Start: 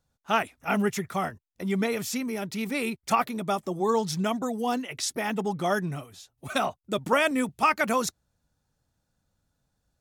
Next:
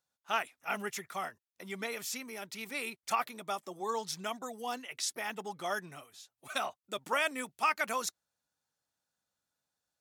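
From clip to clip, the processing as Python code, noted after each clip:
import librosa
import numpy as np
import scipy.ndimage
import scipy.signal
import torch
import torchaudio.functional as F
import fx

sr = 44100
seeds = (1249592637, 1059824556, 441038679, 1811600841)

y = fx.highpass(x, sr, hz=1000.0, slope=6)
y = F.gain(torch.from_numpy(y), -4.5).numpy()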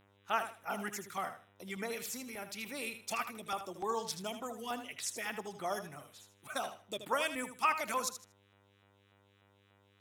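y = fx.dmg_buzz(x, sr, base_hz=100.0, harmonics=39, level_db=-67.0, tilt_db=-3, odd_only=False)
y = fx.filter_lfo_notch(y, sr, shape='saw_down', hz=3.4, low_hz=450.0, high_hz=6900.0, q=0.82)
y = fx.echo_feedback(y, sr, ms=78, feedback_pct=24, wet_db=-10)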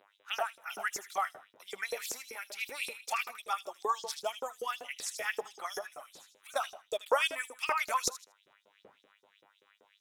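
y = fx.dmg_wind(x, sr, seeds[0], corner_hz=140.0, level_db=-54.0)
y = fx.filter_lfo_highpass(y, sr, shape='saw_up', hz=5.2, low_hz=410.0, high_hz=6000.0, q=3.4)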